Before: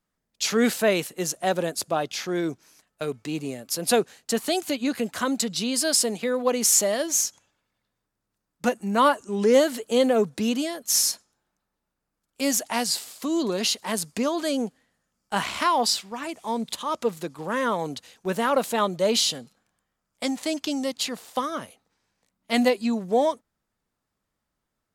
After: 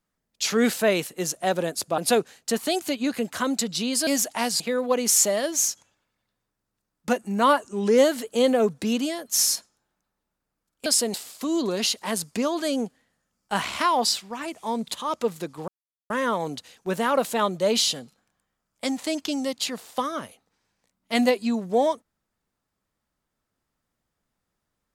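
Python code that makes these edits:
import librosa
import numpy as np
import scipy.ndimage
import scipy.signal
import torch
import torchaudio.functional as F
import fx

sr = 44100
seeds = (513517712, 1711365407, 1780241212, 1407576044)

y = fx.edit(x, sr, fx.cut(start_s=1.98, length_s=1.81),
    fx.swap(start_s=5.88, length_s=0.28, other_s=12.42, other_length_s=0.53),
    fx.insert_silence(at_s=17.49, length_s=0.42), tone=tone)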